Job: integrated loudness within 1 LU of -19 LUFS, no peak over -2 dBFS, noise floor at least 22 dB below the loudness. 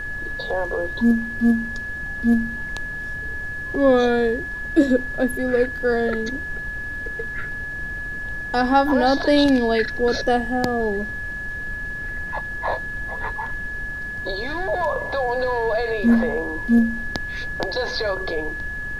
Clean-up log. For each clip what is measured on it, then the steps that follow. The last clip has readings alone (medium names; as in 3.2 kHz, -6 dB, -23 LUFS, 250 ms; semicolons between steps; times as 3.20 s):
steady tone 1.7 kHz; tone level -28 dBFS; noise floor -30 dBFS; noise floor target -45 dBFS; loudness -22.5 LUFS; peak level -4.5 dBFS; loudness target -19.0 LUFS
-> band-stop 1.7 kHz, Q 30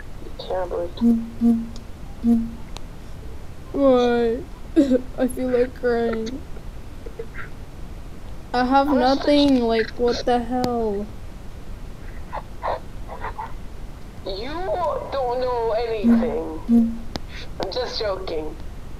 steady tone not found; noise floor -38 dBFS; noise floor target -44 dBFS
-> noise print and reduce 6 dB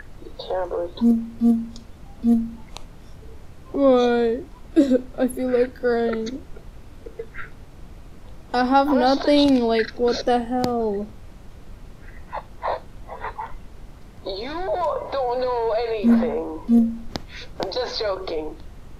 noise floor -44 dBFS; loudness -22.0 LUFS; peak level -5.5 dBFS; loudness target -19.0 LUFS
-> trim +3 dB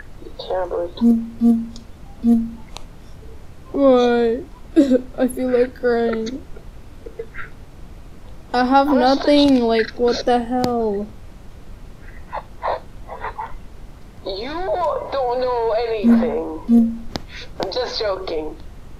loudness -19.0 LUFS; peak level -2.5 dBFS; noise floor -41 dBFS